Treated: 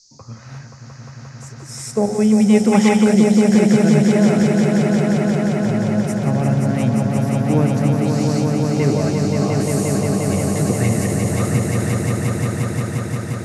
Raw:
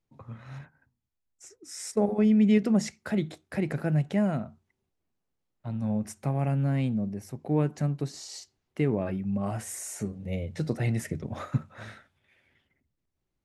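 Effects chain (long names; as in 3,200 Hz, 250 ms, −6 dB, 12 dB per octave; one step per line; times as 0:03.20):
echo that builds up and dies away 176 ms, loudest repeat 5, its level −4 dB
gain on a spectral selection 0:02.72–0:03.04, 790–3,800 Hz +9 dB
noise in a band 4,400–6,800 Hz −59 dBFS
level +7 dB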